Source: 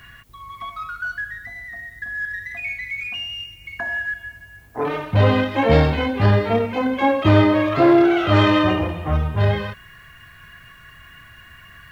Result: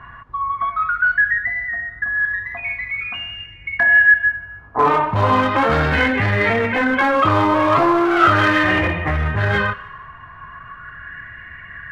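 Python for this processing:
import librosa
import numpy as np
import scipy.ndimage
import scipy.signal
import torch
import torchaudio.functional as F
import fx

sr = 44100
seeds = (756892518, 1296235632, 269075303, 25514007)

p1 = fx.env_lowpass(x, sr, base_hz=1300.0, full_db=-11.5)
p2 = fx.over_compress(p1, sr, threshold_db=-22.0, ratio=-1.0)
p3 = p1 + (p2 * librosa.db_to_amplitude(1.5))
p4 = np.clip(p3, -10.0 ** (-10.5 / 20.0), 10.0 ** (-10.5 / 20.0))
p5 = fx.echo_thinned(p4, sr, ms=152, feedback_pct=37, hz=420.0, wet_db=-21.0)
p6 = fx.bell_lfo(p5, sr, hz=0.39, low_hz=990.0, high_hz=2000.0, db=15)
y = p6 * librosa.db_to_amplitude(-5.0)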